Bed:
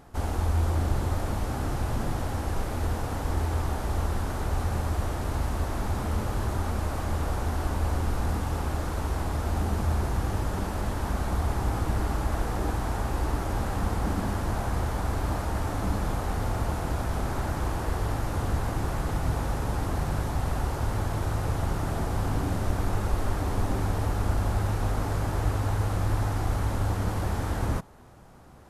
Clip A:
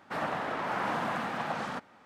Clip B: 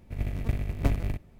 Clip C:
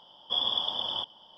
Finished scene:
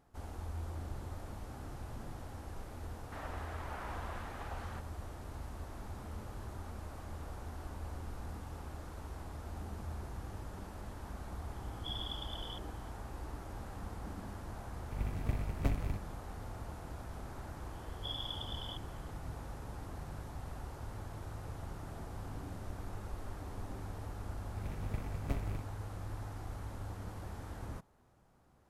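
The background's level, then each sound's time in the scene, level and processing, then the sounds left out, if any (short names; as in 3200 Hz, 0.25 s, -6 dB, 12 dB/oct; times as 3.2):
bed -16.5 dB
3.01 add A -13.5 dB + HPF 300 Hz
11.54 add C -15 dB
14.8 add B -7 dB
17.73 add C -14 dB + short-mantissa float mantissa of 6-bit
24.45 add B -10.5 dB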